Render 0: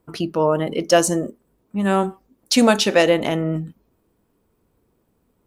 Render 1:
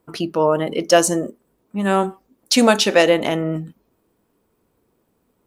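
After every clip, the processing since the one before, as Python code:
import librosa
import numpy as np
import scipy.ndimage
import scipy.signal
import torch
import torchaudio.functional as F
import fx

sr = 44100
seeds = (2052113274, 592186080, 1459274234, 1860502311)

y = fx.low_shelf(x, sr, hz=140.0, db=-8.5)
y = F.gain(torch.from_numpy(y), 2.0).numpy()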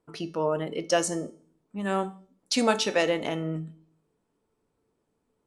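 y = scipy.signal.sosfilt(scipy.signal.butter(4, 10000.0, 'lowpass', fs=sr, output='sos'), x)
y = fx.comb_fb(y, sr, f0_hz=440.0, decay_s=0.49, harmonics='all', damping=0.0, mix_pct=70)
y = fx.room_shoebox(y, sr, seeds[0], volume_m3=460.0, walls='furnished', distance_m=0.31)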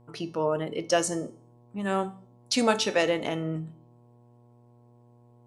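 y = fx.dmg_buzz(x, sr, base_hz=120.0, harmonics=9, level_db=-57.0, tilt_db=-6, odd_only=False)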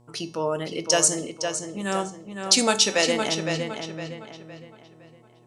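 y = fx.peak_eq(x, sr, hz=7100.0, db=13.0, octaves=2.1)
y = fx.echo_filtered(y, sr, ms=511, feedback_pct=39, hz=4900.0, wet_db=-6.0)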